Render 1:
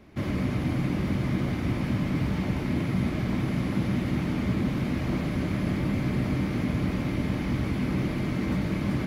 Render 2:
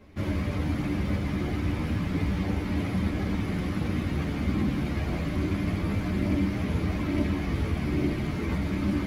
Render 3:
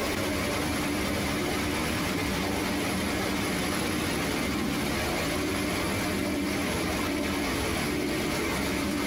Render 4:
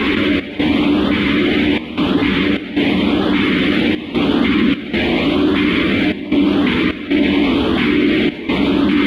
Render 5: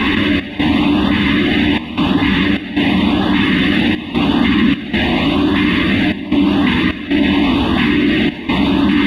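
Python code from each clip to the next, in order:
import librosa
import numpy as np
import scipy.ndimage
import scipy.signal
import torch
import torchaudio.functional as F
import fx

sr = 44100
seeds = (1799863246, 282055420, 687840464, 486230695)

y1 = fx.chorus_voices(x, sr, voices=6, hz=0.29, base_ms=12, depth_ms=2.2, mix_pct=50)
y1 = y1 * librosa.db_to_amplitude(2.5)
y2 = fx.bass_treble(y1, sr, bass_db=-15, treble_db=10)
y2 = y2 + 10.0 ** (-8.5 / 20.0) * np.pad(y2, (int(209 * sr / 1000.0), 0))[:len(y2)]
y2 = fx.env_flatten(y2, sr, amount_pct=100)
y3 = fx.filter_lfo_notch(y2, sr, shape='saw_up', hz=0.9, low_hz=580.0, high_hz=2400.0, q=1.3)
y3 = fx.curve_eq(y3, sr, hz=(140.0, 250.0, 650.0, 3400.0, 5400.0, 12000.0), db=(0, 12, 2, 9, -19, -22))
y3 = fx.step_gate(y3, sr, bpm=76, pattern='xx.xxxxxx.x', floor_db=-12.0, edge_ms=4.5)
y3 = y3 * librosa.db_to_amplitude(7.5)
y4 = y3 + 0.61 * np.pad(y3, (int(1.1 * sr / 1000.0), 0))[:len(y3)]
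y4 = y4 * librosa.db_to_amplitude(1.0)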